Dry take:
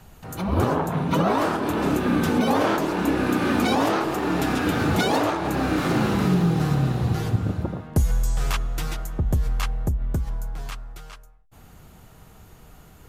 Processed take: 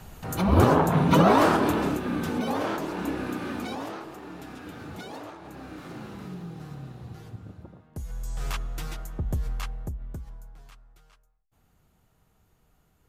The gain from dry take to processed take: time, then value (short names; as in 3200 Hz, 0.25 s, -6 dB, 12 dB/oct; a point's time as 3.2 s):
1.61 s +3 dB
2.01 s -7.5 dB
3.05 s -7.5 dB
4.39 s -18.5 dB
7.92 s -18.5 dB
8.47 s -6.5 dB
9.5 s -6.5 dB
10.66 s -17.5 dB